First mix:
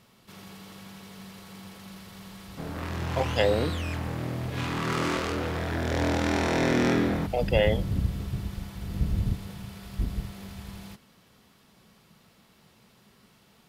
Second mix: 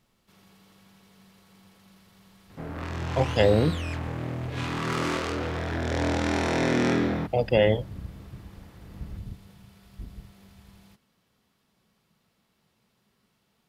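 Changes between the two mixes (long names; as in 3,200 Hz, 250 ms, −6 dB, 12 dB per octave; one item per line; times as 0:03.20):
speech: remove high-pass filter 510 Hz 6 dB per octave
first sound −11.5 dB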